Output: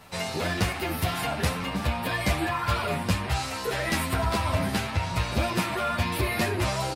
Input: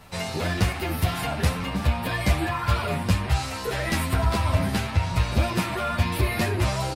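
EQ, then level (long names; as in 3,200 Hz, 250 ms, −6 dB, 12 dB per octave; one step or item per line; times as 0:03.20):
low-shelf EQ 120 Hz −8.5 dB
0.0 dB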